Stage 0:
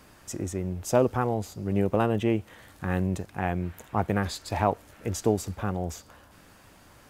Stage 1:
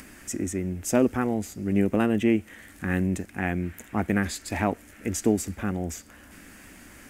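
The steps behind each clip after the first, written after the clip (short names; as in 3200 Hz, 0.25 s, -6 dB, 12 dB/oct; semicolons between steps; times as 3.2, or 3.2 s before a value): graphic EQ 125/250/500/1000/2000/4000/8000 Hz -9/+7/-5/-9/+7/-7/+4 dB; upward compressor, threshold -44 dBFS; gain +3 dB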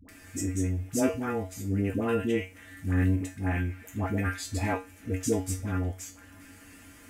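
resonator 93 Hz, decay 0.26 s, harmonics odd, mix 90%; dispersion highs, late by 89 ms, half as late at 550 Hz; gain +7.5 dB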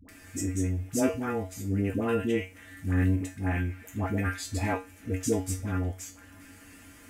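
nothing audible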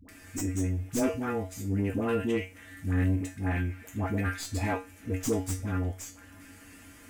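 tracing distortion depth 0.039 ms; soft clip -18 dBFS, distortion -21 dB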